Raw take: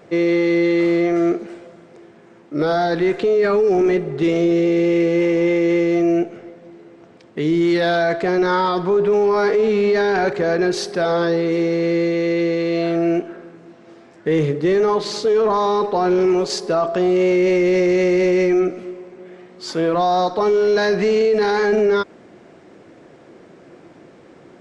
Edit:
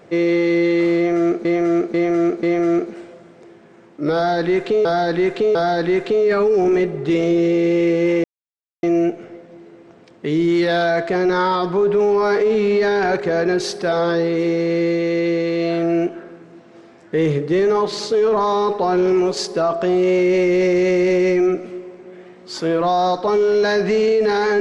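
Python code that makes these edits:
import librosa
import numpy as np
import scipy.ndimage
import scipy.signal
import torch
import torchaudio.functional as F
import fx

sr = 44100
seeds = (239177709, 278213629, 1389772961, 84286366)

y = fx.edit(x, sr, fx.repeat(start_s=0.96, length_s=0.49, count=4),
    fx.repeat(start_s=2.68, length_s=0.7, count=3),
    fx.silence(start_s=5.37, length_s=0.59), tone=tone)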